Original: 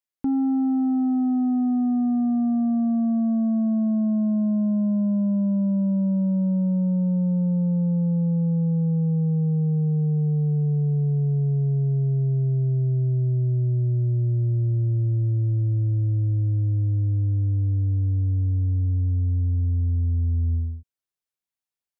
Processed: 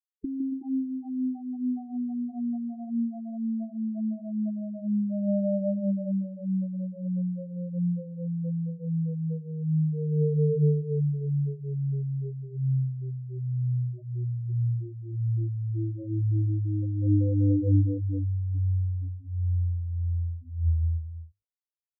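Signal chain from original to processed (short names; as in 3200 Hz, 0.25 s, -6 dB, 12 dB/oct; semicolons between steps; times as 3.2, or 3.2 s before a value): median filter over 25 samples; notches 50/100/150/200 Hz; companded quantiser 8-bit; negative-ratio compressor -27 dBFS, ratio -0.5; 15.75–17.82 band shelf 560 Hz +9 dB; bouncing-ball echo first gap 0.16 s, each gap 0.75×, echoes 5; dynamic EQ 340 Hz, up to +8 dB, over -46 dBFS, Q 2.4; comb 1.8 ms, depth 31%; spectral gate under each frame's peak -15 dB strong; gain -1 dB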